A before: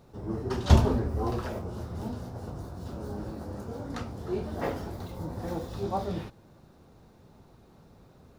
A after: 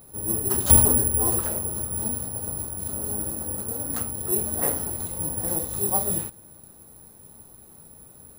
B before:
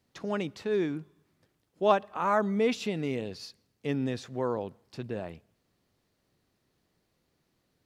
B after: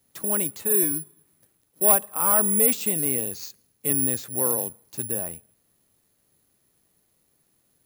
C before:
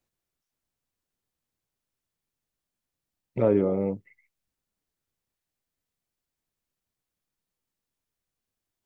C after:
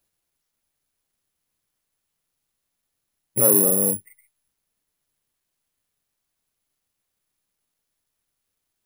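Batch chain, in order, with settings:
careless resampling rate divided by 4×, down none, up zero stuff; soft clip -4 dBFS; normalise peaks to -3 dBFS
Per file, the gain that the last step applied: +1.0, +1.0, +1.5 dB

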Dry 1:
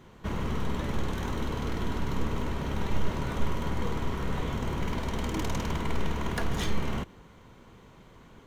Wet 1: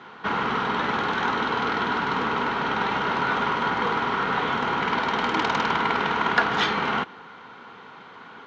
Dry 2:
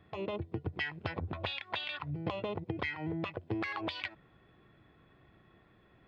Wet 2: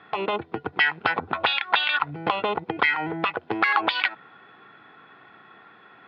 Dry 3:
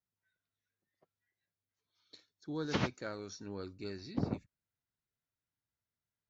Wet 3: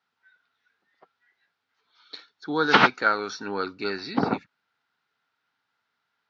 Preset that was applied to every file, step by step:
speaker cabinet 330–4500 Hz, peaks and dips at 340 Hz -6 dB, 580 Hz -8 dB, 830 Hz +5 dB, 1400 Hz +9 dB; match loudness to -24 LUFS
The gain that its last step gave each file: +11.5, +14.5, +18.0 dB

